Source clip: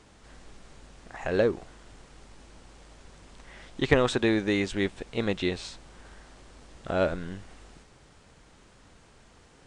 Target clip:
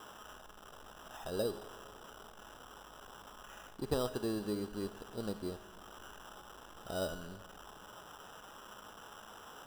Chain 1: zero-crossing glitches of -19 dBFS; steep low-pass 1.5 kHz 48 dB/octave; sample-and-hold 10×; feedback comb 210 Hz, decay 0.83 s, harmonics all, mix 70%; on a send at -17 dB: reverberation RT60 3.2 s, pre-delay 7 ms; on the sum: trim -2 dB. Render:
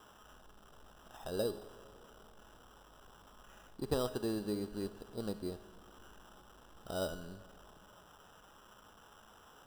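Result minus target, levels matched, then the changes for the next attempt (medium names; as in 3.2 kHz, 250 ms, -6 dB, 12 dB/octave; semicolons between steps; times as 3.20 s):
zero-crossing glitches: distortion -8 dB
change: zero-crossing glitches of -11 dBFS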